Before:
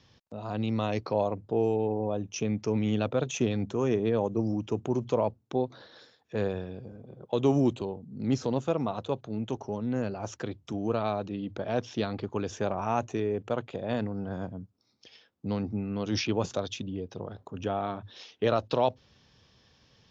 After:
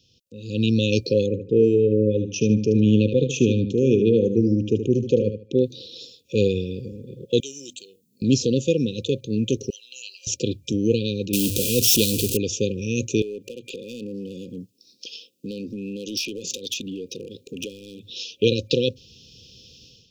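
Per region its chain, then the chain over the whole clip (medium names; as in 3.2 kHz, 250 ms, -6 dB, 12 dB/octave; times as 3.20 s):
1.26–5.62 s: low-pass 1.5 kHz 6 dB/octave + feedback delay 75 ms, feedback 23%, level -9 dB
7.40–8.22 s: differentiator + hum notches 50/100/150/200/250/300 Hz
9.70–10.27 s: elliptic high-pass 810 Hz, stop band 80 dB + comb 1 ms, depth 72%
11.33–12.37 s: jump at every zero crossing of -32 dBFS + treble shelf 5.8 kHz +9 dB
13.22–18.10 s: high-pass 230 Hz + compression, threshold -39 dBFS + hard clipper -37.5 dBFS
whole clip: FFT band-reject 540–2400 Hz; treble shelf 3.4 kHz +11 dB; level rider gain up to 14.5 dB; trim -3.5 dB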